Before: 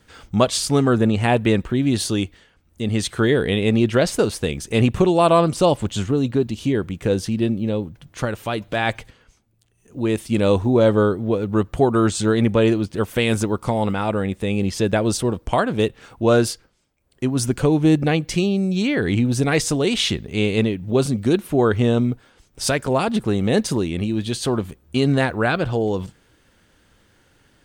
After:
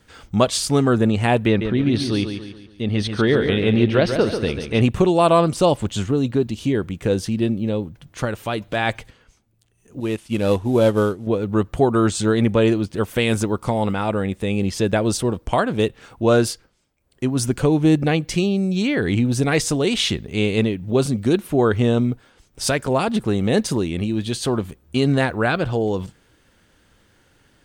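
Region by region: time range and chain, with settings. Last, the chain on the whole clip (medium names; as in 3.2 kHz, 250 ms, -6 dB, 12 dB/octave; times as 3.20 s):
1.47–4.81 s: Savitzky-Golay filter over 15 samples + feedback delay 141 ms, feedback 44%, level -7.5 dB
10.00–11.27 s: CVSD coder 64 kbps + peaking EQ 2.9 kHz +4.5 dB 0.45 oct + upward expansion, over -32 dBFS
whole clip: none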